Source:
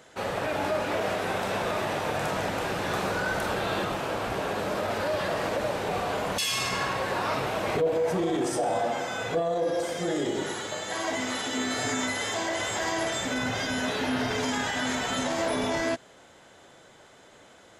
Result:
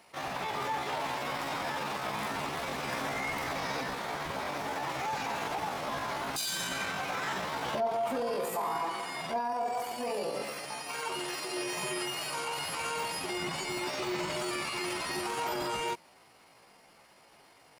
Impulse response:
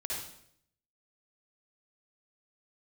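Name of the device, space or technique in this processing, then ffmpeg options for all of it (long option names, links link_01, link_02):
chipmunk voice: -af "asetrate=62367,aresample=44100,atempo=0.707107,volume=-5.5dB"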